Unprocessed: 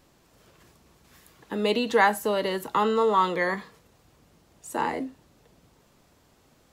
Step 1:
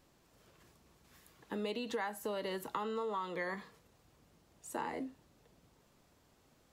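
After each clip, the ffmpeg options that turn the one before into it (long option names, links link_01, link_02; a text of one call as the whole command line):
ffmpeg -i in.wav -af "acompressor=threshold=-27dB:ratio=10,volume=-7.5dB" out.wav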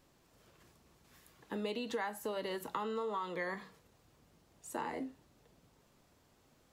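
ffmpeg -i in.wav -af "flanger=delay=7.3:depth=1.4:regen=-86:speed=0.87:shape=triangular,volume=4.5dB" out.wav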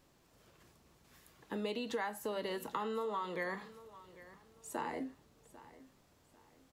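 ffmpeg -i in.wav -af "aecho=1:1:796|1592|2388:0.126|0.039|0.0121" out.wav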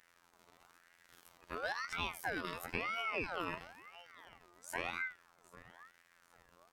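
ffmpeg -i in.wav -af "afftfilt=real='hypot(re,im)*cos(PI*b)':imag='0':win_size=2048:overlap=0.75,aeval=exprs='val(0)*sin(2*PI*1300*n/s+1300*0.4/0.99*sin(2*PI*0.99*n/s))':channel_layout=same,volume=5.5dB" out.wav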